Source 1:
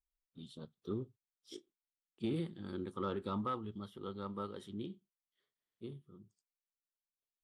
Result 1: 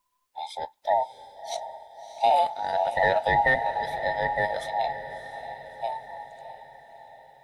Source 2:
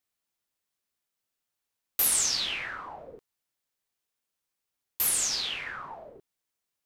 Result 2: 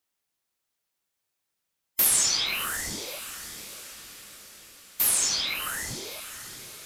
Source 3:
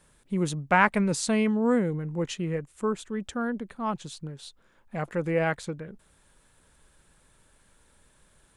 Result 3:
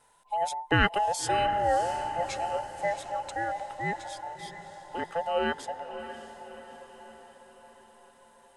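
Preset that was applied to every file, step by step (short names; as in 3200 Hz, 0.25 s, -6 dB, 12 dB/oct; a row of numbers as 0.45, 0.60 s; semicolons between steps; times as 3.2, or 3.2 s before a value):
band inversion scrambler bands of 1000 Hz; diffused feedback echo 0.64 s, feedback 54%, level -11.5 dB; normalise peaks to -9 dBFS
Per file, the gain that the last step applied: +15.5, +3.0, -2.5 dB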